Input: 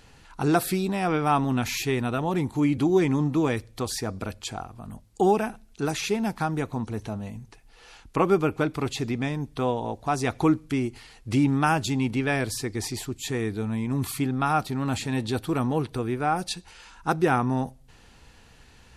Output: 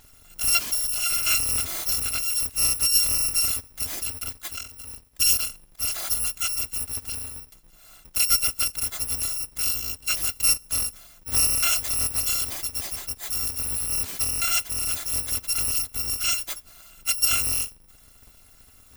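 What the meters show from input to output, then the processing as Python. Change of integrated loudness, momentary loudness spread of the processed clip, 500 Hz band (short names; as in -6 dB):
+4.0 dB, 11 LU, -20.0 dB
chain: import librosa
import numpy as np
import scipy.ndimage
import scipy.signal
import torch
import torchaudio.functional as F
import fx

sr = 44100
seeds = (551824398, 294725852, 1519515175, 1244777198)

y = fx.bit_reversed(x, sr, seeds[0], block=256)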